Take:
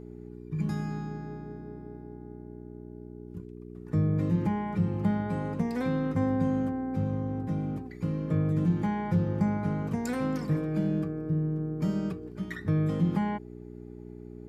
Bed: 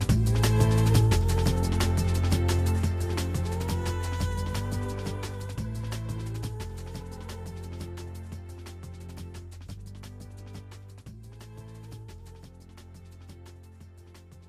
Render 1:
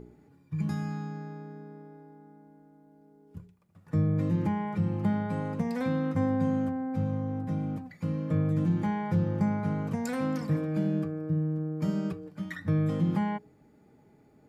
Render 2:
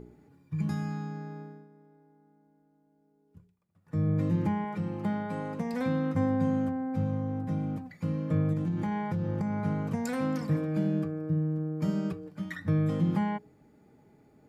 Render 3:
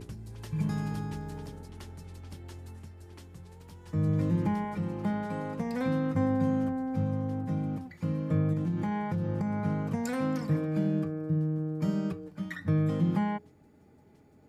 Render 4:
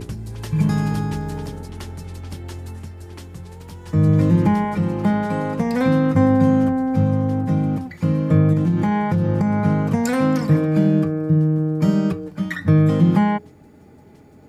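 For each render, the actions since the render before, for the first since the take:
de-hum 60 Hz, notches 7
1.41–4.10 s: dip -10.5 dB, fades 0.27 s; 4.64–5.74 s: peaking EQ 80 Hz -11 dB 1.8 oct; 8.53–9.65 s: compression, threshold -26 dBFS
add bed -20 dB
trim +12 dB

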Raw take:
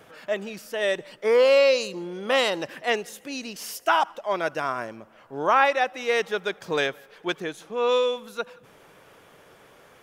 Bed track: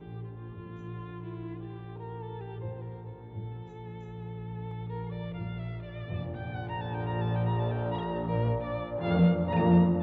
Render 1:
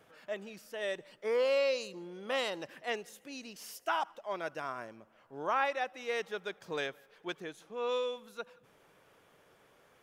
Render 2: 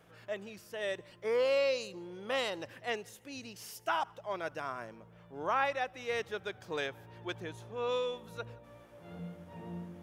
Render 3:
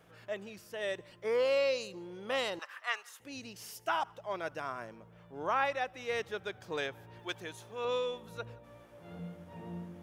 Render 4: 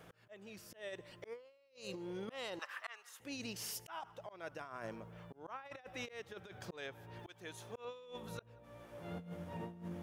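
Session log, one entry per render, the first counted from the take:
trim -11.5 dB
add bed track -21.5 dB
2.59–3.20 s: resonant high-pass 1.2 kHz, resonance Q 4.7; 7.19–7.85 s: tilt EQ +2 dB/octave
slow attack 595 ms; compressor with a negative ratio -46 dBFS, ratio -0.5

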